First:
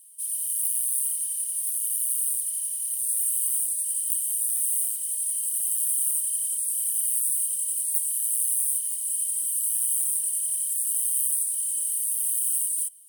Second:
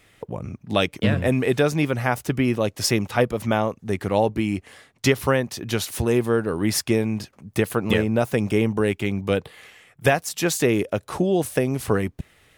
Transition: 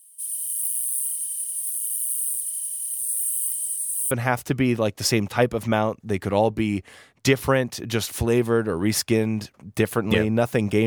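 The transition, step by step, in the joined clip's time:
first
3.51–4.11 reverse
4.11 switch to second from 1.9 s

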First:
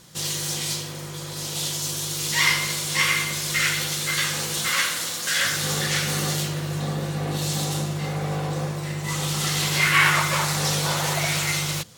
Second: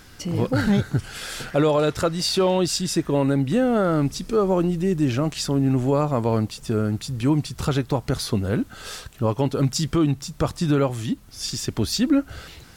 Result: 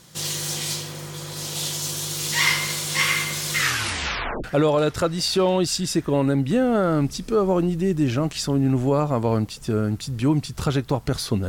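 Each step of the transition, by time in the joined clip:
first
3.57 tape stop 0.87 s
4.44 switch to second from 1.45 s

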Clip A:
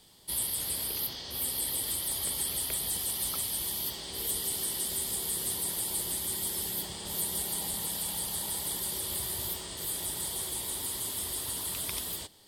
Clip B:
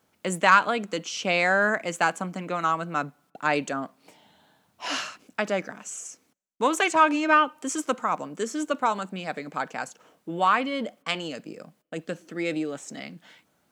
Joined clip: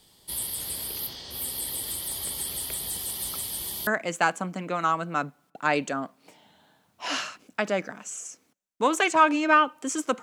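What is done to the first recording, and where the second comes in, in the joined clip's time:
clip A
3.87 switch to clip B from 1.67 s

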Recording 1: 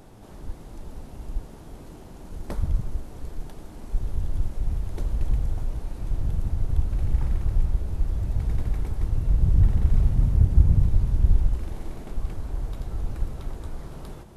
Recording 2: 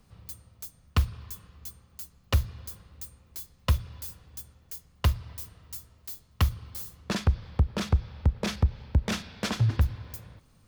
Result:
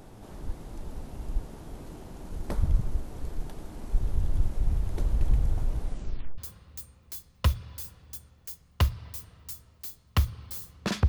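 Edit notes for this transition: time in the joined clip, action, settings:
recording 1
5.82 tape stop 0.56 s
6.38 switch to recording 2 from 2.62 s

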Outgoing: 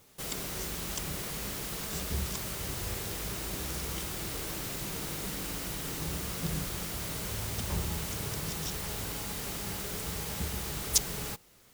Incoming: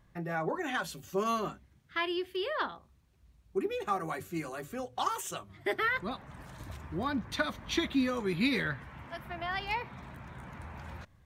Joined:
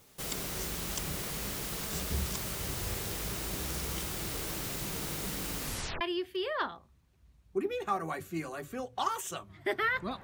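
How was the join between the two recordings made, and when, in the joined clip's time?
outgoing
5.59 tape stop 0.42 s
6.01 switch to incoming from 2.01 s

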